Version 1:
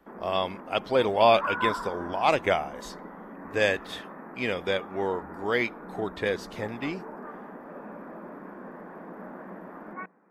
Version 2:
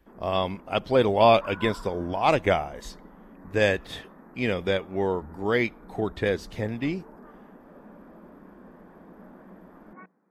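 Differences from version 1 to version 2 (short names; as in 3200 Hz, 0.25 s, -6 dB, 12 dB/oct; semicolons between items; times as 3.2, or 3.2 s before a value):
background -10.5 dB; master: add low shelf 280 Hz +10 dB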